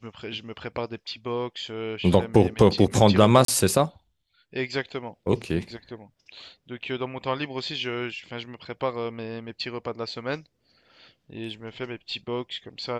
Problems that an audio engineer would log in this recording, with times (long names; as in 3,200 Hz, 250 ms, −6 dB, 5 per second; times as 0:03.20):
0:03.45–0:03.48: drop-out 33 ms